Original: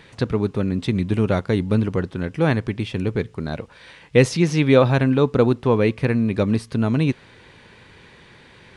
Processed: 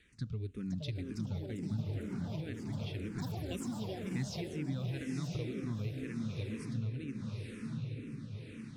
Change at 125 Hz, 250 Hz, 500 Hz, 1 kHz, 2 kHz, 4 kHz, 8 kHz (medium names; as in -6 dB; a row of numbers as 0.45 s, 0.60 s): -15.0 dB, -18.0 dB, -25.0 dB, -23.5 dB, -21.5 dB, -15.0 dB, -13.5 dB